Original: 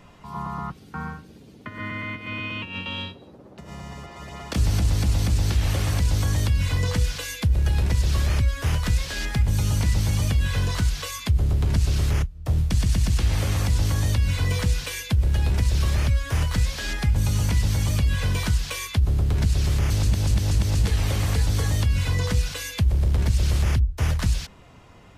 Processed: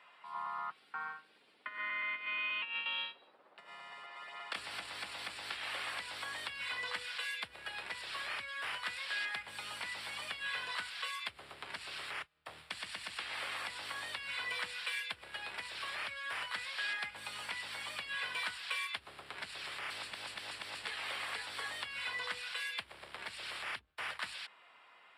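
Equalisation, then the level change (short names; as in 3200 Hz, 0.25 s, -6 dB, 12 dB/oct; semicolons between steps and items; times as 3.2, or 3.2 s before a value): running mean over 7 samples; HPF 1300 Hz 12 dB/oct; -1.0 dB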